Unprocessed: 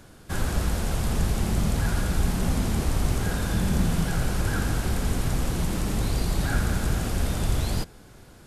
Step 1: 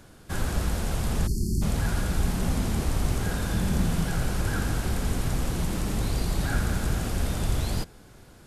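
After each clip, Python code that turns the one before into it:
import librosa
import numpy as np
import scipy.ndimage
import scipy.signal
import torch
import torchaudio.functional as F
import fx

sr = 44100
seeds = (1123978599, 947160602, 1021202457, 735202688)

y = fx.spec_erase(x, sr, start_s=1.27, length_s=0.35, low_hz=410.0, high_hz=4200.0)
y = F.gain(torch.from_numpy(y), -1.5).numpy()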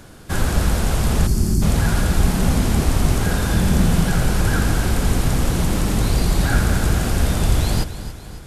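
y = fx.echo_feedback(x, sr, ms=277, feedback_pct=50, wet_db=-13.0)
y = F.gain(torch.from_numpy(y), 8.5).numpy()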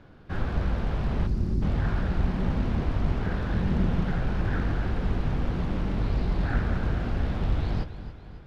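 y = fx.air_absorb(x, sr, metres=310.0)
y = fx.doubler(y, sr, ms=21.0, db=-12.5)
y = fx.doppler_dist(y, sr, depth_ms=0.53)
y = F.gain(torch.from_numpy(y), -8.5).numpy()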